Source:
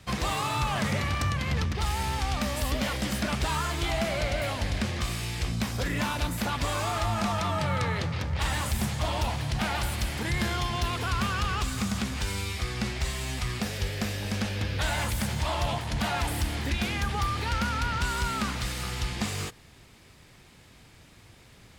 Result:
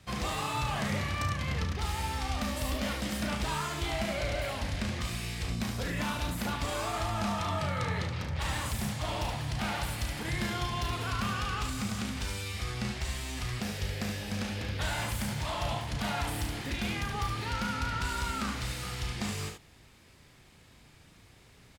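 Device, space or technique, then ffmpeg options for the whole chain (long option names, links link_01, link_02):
slapback doubling: -filter_complex "[0:a]asplit=3[link_01][link_02][link_03];[link_02]adelay=34,volume=-7dB[link_04];[link_03]adelay=73,volume=-6dB[link_05];[link_01][link_04][link_05]amix=inputs=3:normalize=0,volume=-5.5dB"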